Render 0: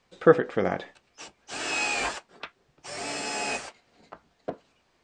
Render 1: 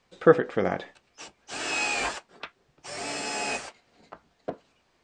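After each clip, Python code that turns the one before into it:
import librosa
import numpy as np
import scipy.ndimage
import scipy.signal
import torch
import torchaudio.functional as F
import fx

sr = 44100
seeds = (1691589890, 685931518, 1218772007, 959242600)

y = x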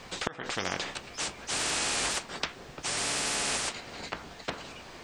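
y = fx.gate_flip(x, sr, shuts_db=-10.0, range_db=-29)
y = fx.spectral_comp(y, sr, ratio=4.0)
y = y * librosa.db_to_amplitude(-3.5)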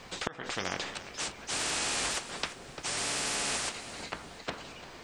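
y = fx.echo_feedback(x, sr, ms=346, feedback_pct=33, wet_db=-14.5)
y = y * librosa.db_to_amplitude(-2.0)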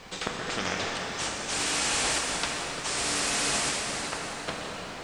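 y = fx.rev_plate(x, sr, seeds[0], rt60_s=4.5, hf_ratio=0.7, predelay_ms=0, drr_db=-2.0)
y = y * librosa.db_to_amplitude(1.5)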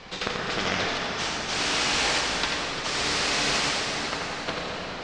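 y = fx.ladder_lowpass(x, sr, hz=6600.0, resonance_pct=20)
y = y + 10.0 ** (-4.5 / 20.0) * np.pad(y, (int(88 * sr / 1000.0), 0))[:len(y)]
y = fx.doppler_dist(y, sr, depth_ms=0.16)
y = y * librosa.db_to_amplitude(7.5)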